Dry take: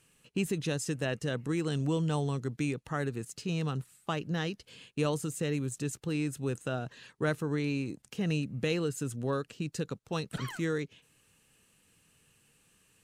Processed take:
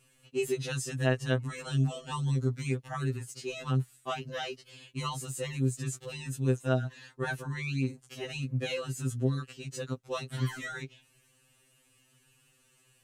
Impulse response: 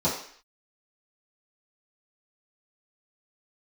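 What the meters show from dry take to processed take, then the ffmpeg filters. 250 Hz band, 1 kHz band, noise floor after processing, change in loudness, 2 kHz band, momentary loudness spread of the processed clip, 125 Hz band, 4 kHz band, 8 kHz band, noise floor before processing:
-3.0 dB, +1.0 dB, -67 dBFS, +0.5 dB, +1.0 dB, 9 LU, +3.0 dB, +1.0 dB, +0.5 dB, -68 dBFS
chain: -af "afftfilt=real='re*2.45*eq(mod(b,6),0)':imag='im*2.45*eq(mod(b,6),0)':win_size=2048:overlap=0.75,volume=1.41"

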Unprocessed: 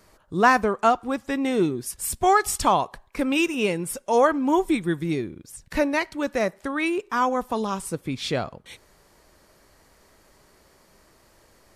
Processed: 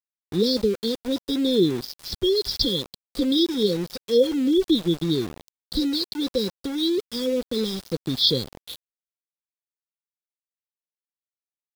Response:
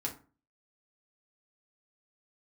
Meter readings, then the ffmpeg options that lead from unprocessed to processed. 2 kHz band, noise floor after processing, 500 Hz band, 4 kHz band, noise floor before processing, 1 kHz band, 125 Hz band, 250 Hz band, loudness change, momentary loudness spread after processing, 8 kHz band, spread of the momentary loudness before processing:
-17.5 dB, under -85 dBFS, +1.0 dB, +11.0 dB, -58 dBFS, -24.5 dB, +2.0 dB, +2.5 dB, 0.0 dB, 10 LU, -8.0 dB, 10 LU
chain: -af "crystalizer=i=6.5:c=0,aresample=11025,aresample=44100,afftfilt=real='re*(1-between(b*sr/4096,540,3200))':imag='im*(1-between(b*sr/4096,540,3200))':win_size=4096:overlap=0.75,aeval=exprs='val(0)*gte(abs(val(0)),0.02)':c=same,volume=1.26"

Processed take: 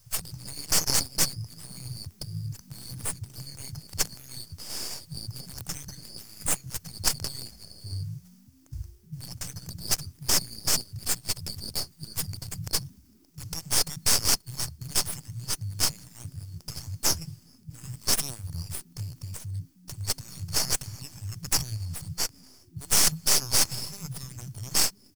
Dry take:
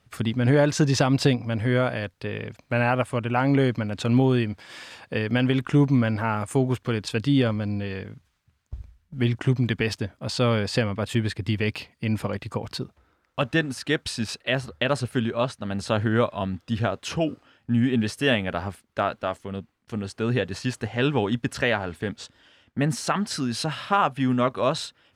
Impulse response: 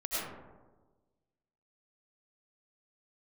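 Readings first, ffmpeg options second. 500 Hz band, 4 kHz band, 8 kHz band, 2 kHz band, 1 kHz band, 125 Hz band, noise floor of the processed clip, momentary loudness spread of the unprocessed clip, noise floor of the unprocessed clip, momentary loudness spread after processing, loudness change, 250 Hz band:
-18.5 dB, +3.0 dB, +13.0 dB, -10.0 dB, -12.0 dB, -11.0 dB, -58 dBFS, 12 LU, -69 dBFS, 18 LU, -3.5 dB, -19.0 dB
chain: -filter_complex "[0:a]highpass=72,afftfilt=real='re*(1-between(b*sr/4096,170,4300))':imag='im*(1-between(b*sr/4096,170,4300))':win_size=4096:overlap=0.75,aemphasis=mode=production:type=75fm,afftfilt=real='re*lt(hypot(re,im),0.158)':imag='im*lt(hypot(re,im),0.158)':win_size=1024:overlap=0.75,equalizer=f=5500:w=3.3:g=5,acrossover=split=940[s0][s1];[s0]asplit=4[s2][s3][s4][s5];[s3]adelay=305,afreqshift=84,volume=0.0794[s6];[s4]adelay=610,afreqshift=168,volume=0.0359[s7];[s5]adelay=915,afreqshift=252,volume=0.016[s8];[s2][s6][s7][s8]amix=inputs=4:normalize=0[s9];[s1]aeval=exprs='max(val(0),0)':c=same[s10];[s9][s10]amix=inputs=2:normalize=0,volume=2.51"

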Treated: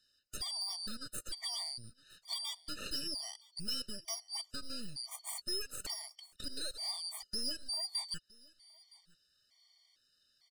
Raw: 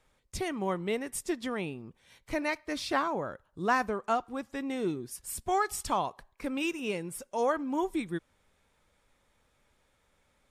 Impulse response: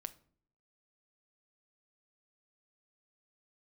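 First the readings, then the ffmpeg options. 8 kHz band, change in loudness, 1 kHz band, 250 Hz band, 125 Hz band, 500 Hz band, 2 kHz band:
-0.5 dB, -6.5 dB, -23.0 dB, -18.5 dB, -13.0 dB, -22.0 dB, -17.0 dB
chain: -filter_complex "[0:a]afftfilt=real='real(if(lt(b,272),68*(eq(floor(b/68),0)*3+eq(floor(b/68),1)*2+eq(floor(b/68),2)*1+eq(floor(b/68),3)*0)+mod(b,68),b),0)':imag='imag(if(lt(b,272),68*(eq(floor(b/68),0)*3+eq(floor(b/68),1)*2+eq(floor(b/68),2)*1+eq(floor(b/68),3)*0)+mod(b,68),b),0)':win_size=2048:overlap=0.75,equalizer=f=3100:t=o:w=1.3:g=3,bandreject=f=2500:w=11,acompressor=threshold=0.0126:ratio=3,acrossover=split=170[s0][s1];[s0]alimiter=level_in=47.3:limit=0.0631:level=0:latency=1:release=296,volume=0.0211[s2];[s2][s1]amix=inputs=2:normalize=0,aeval=exprs='0.0562*(cos(1*acos(clip(val(0)/0.0562,-1,1)))-cos(1*PI/2))+0.0112*(cos(6*acos(clip(val(0)/0.0562,-1,1)))-cos(6*PI/2))':c=same,asplit=2[s3][s4];[s4]aecho=0:1:965:0.0631[s5];[s3][s5]amix=inputs=2:normalize=0,afftfilt=real='re*gt(sin(2*PI*1.1*pts/sr)*(1-2*mod(floor(b*sr/1024/610),2)),0)':imag='im*gt(sin(2*PI*1.1*pts/sr)*(1-2*mod(floor(b*sr/1024/610),2)),0)':win_size=1024:overlap=0.75"

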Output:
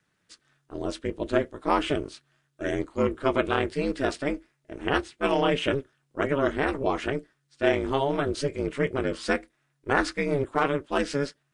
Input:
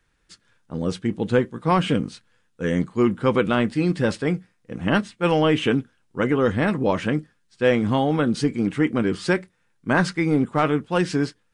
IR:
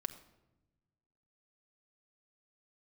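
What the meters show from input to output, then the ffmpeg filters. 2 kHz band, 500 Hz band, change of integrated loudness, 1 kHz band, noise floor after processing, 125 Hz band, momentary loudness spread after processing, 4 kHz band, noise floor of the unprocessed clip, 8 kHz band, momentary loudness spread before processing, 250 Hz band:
-3.0 dB, -3.5 dB, -5.0 dB, -2.5 dB, -74 dBFS, -9.5 dB, 9 LU, -3.0 dB, -66 dBFS, -3.0 dB, 8 LU, -8.0 dB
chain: -af "aeval=exprs='val(0)*sin(2*PI*140*n/s)':c=same,lowshelf=f=150:g=-11.5"

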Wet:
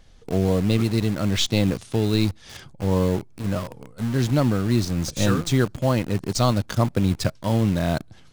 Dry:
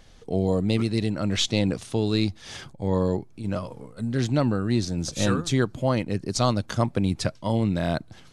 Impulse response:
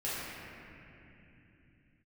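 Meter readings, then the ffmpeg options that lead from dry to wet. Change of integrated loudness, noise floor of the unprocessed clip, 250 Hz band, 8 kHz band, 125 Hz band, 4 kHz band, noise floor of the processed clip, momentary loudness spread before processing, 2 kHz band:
+2.5 dB, -49 dBFS, +2.5 dB, +2.0 dB, +4.0 dB, +1.5 dB, -48 dBFS, 8 LU, +2.0 dB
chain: -filter_complex "[0:a]lowshelf=f=120:g=5.5,asplit=2[s0][s1];[s1]acrusher=bits=4:mix=0:aa=0.000001,volume=0.708[s2];[s0][s2]amix=inputs=2:normalize=0,volume=0.668"

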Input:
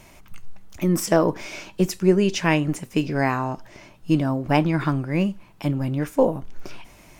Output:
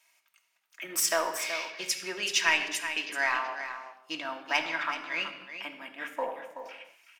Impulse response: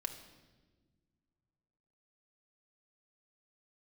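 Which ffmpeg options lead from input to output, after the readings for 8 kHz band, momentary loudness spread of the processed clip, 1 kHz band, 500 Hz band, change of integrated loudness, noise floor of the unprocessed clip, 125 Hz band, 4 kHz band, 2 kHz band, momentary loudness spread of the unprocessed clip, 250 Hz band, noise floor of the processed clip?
+2.5 dB, 16 LU, -5.5 dB, -14.0 dB, -7.5 dB, -50 dBFS, under -35 dB, +3.0 dB, +2.0 dB, 11 LU, -24.0 dB, -73 dBFS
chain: -filter_complex "[0:a]highpass=1500,afwtdn=0.00562,asplit=2[s0][s1];[s1]asoftclip=type=tanh:threshold=0.075,volume=0.708[s2];[s0][s2]amix=inputs=2:normalize=0,aecho=1:1:377:0.316[s3];[1:a]atrim=start_sample=2205,afade=t=out:st=0.34:d=0.01,atrim=end_sample=15435[s4];[s3][s4]afir=irnorm=-1:irlink=0"

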